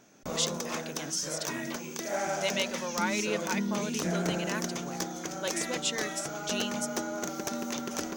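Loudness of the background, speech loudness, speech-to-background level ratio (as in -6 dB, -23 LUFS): -34.0 LUFS, -35.0 LUFS, -1.0 dB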